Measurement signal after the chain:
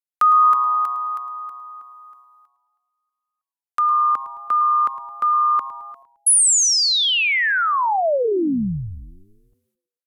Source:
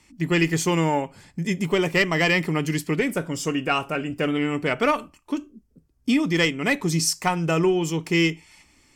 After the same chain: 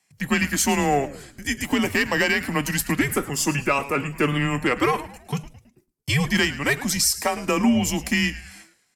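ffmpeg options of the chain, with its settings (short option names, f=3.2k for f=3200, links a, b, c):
-filter_complex "[0:a]agate=range=-16dB:threshold=-54dB:ratio=16:detection=peak,highpass=f=330:w=0.5412,highpass=f=330:w=1.3066,equalizer=f=12k:t=o:w=0.9:g=9.5,alimiter=limit=-14dB:level=0:latency=1:release=246,afreqshift=-140,asplit=2[a][b];[b]asplit=4[c][d][e][f];[c]adelay=108,afreqshift=-130,volume=-15.5dB[g];[d]adelay=216,afreqshift=-260,volume=-22.8dB[h];[e]adelay=324,afreqshift=-390,volume=-30.2dB[i];[f]adelay=432,afreqshift=-520,volume=-37.5dB[j];[g][h][i][j]amix=inputs=4:normalize=0[k];[a][k]amix=inputs=2:normalize=0,volume=4.5dB"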